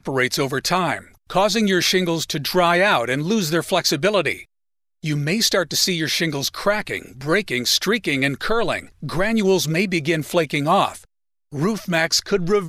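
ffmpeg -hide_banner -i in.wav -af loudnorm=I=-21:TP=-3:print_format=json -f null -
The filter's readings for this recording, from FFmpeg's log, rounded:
"input_i" : "-19.9",
"input_tp" : "-4.2",
"input_lra" : "1.8",
"input_thresh" : "-30.1",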